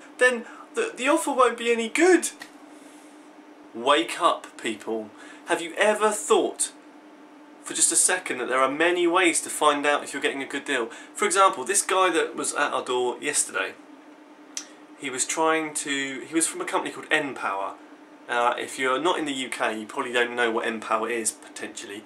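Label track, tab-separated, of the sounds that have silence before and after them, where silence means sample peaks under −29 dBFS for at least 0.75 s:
3.760000	6.670000	sound
7.660000	13.700000	sound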